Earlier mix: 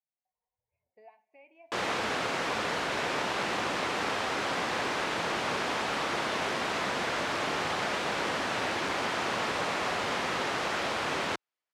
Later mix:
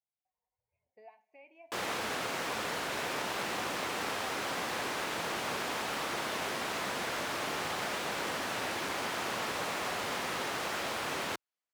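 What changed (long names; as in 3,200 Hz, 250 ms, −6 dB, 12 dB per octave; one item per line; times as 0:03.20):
background −5.0 dB
master: remove high-frequency loss of the air 63 metres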